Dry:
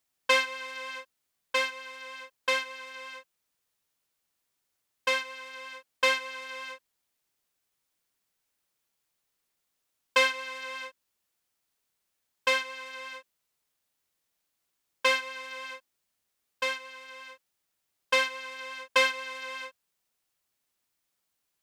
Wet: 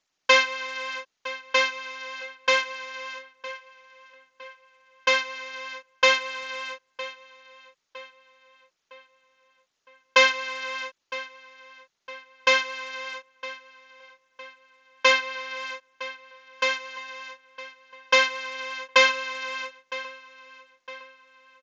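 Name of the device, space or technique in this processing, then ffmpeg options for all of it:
Bluetooth headset: -filter_complex "[0:a]asettb=1/sr,asplit=3[a][b][c];[a]atrim=end=15.124[d];[b]atrim=start=15.12:end=15.57,asetpts=PTS-STARTPTS,afade=t=in:d=0.004:c=qsin,afade=t=out:st=0.446:d=0.004:c=qsin,lowpass=5.8k[e];[c]atrim=start=15.566[f];[d][e]acrossfade=d=0.004:c1=hsin:c2=qsin[g];[g][f]acrossfade=d=0.004:c1=qsin:c2=hsin,highpass=f=190:p=1,asplit=2[h][i];[i]adelay=960,lowpass=f=4.2k:p=1,volume=-15.5dB,asplit=2[j][k];[k]adelay=960,lowpass=f=4.2k:p=1,volume=0.48,asplit=2[l][m];[m]adelay=960,lowpass=f=4.2k:p=1,volume=0.48,asplit=2[n][o];[o]adelay=960,lowpass=f=4.2k:p=1,volume=0.48[p];[h][j][l][n][p]amix=inputs=5:normalize=0,aresample=16000,aresample=44100,volume=6dB" -ar 16000 -c:a sbc -b:a 64k

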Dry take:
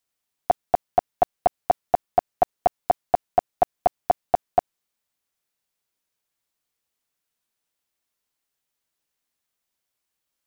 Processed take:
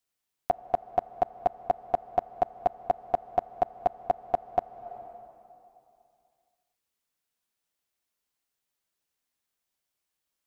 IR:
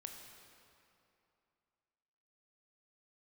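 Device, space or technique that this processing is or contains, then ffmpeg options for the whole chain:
ducked reverb: -filter_complex "[0:a]asplit=3[a][b][c];[1:a]atrim=start_sample=2205[d];[b][d]afir=irnorm=-1:irlink=0[e];[c]apad=whole_len=461498[f];[e][f]sidechaincompress=threshold=-25dB:ratio=12:attack=16:release=390,volume=3.5dB[g];[a][g]amix=inputs=2:normalize=0,volume=-8dB"

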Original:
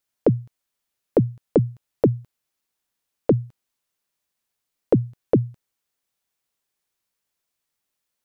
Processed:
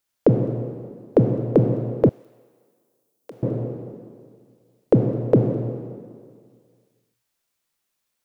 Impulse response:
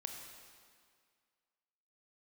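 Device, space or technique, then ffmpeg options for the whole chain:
stairwell: -filter_complex "[1:a]atrim=start_sample=2205[a];[0:a][a]afir=irnorm=-1:irlink=0,asettb=1/sr,asplit=3[b][c][d];[b]atrim=end=2.094[e];[c]atrim=start=2.09:end=3.43,asetpts=PTS-STARTPTS,afade=t=in:d=0.004:c=qsin,afade=t=out:st=1.336:d=0.004:c=qsin,aderivative[f];[d]atrim=start=3.426[g];[e][f]acrossfade=d=0.004:c1=hsin:c2=qsin[h];[h][g]acrossfade=d=0.004:c1=qsin:c2=hsin,volume=5.5dB"

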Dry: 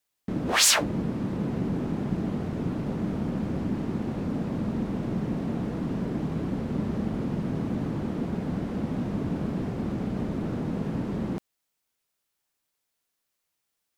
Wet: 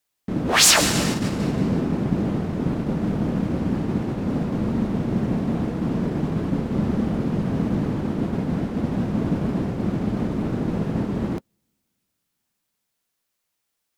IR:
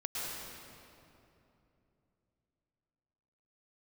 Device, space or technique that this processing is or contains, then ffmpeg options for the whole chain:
keyed gated reverb: -filter_complex "[0:a]asplit=3[a][b][c];[1:a]atrim=start_sample=2205[d];[b][d]afir=irnorm=-1:irlink=0[e];[c]apad=whole_len=616474[f];[e][f]sidechaingate=range=-45dB:threshold=-29dB:ratio=16:detection=peak,volume=-5.5dB[g];[a][g]amix=inputs=2:normalize=0,volume=2.5dB"

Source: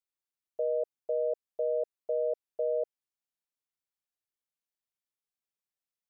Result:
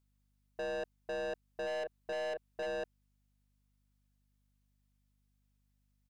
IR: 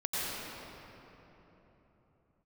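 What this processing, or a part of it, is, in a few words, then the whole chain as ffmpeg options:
valve amplifier with mains hum: -filter_complex "[0:a]asplit=3[a][b][c];[a]afade=t=out:st=1.66:d=0.02[d];[b]asplit=2[e][f];[f]adelay=34,volume=-9.5dB[g];[e][g]amix=inputs=2:normalize=0,afade=t=in:st=1.66:d=0.02,afade=t=out:st=2.65:d=0.02[h];[c]afade=t=in:st=2.65:d=0.02[i];[d][h][i]amix=inputs=3:normalize=0,aeval=exprs='(tanh(100*val(0)+0.1)-tanh(0.1))/100':c=same,aeval=exprs='val(0)+0.000112*(sin(2*PI*50*n/s)+sin(2*PI*2*50*n/s)/2+sin(2*PI*3*50*n/s)/3+sin(2*PI*4*50*n/s)/4+sin(2*PI*5*50*n/s)/5)':c=same,volume=4.5dB"

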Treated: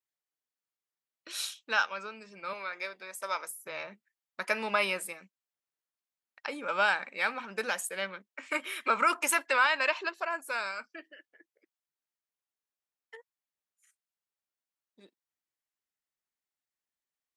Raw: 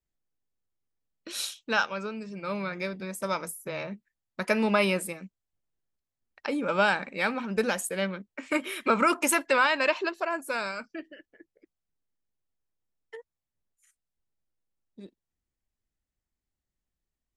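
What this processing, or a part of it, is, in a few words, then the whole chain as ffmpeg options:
filter by subtraction: -filter_complex "[0:a]asettb=1/sr,asplit=3[a][b][c];[a]atrim=end=2.534[d];[b]atrim=start=2.53:end=3.5,asetpts=PTS-STARTPTS,afade=t=in:d=0.004:c=qsin,afade=t=out:st=0.966:d=0.004:c=qsin,highpass=380[e];[c]atrim=start=3.496[f];[d][e]acrossfade=d=0.004:c1=hsin:c2=qsin[g];[g][f]acrossfade=d=0.004:c1=qsin:c2=hsin,asplit=2[h][i];[i]lowpass=1.3k,volume=-1[j];[h][j]amix=inputs=2:normalize=0,volume=-3dB"

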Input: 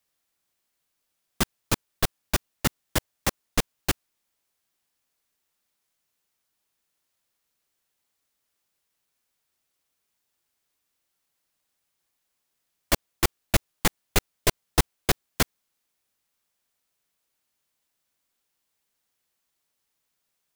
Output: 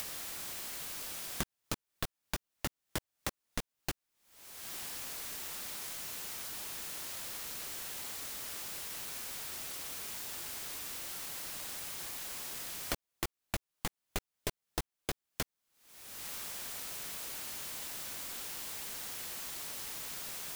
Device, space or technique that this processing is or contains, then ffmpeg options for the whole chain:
upward and downward compression: -af "acompressor=mode=upward:threshold=-32dB:ratio=2.5,acompressor=threshold=-50dB:ratio=6,volume=12.5dB"

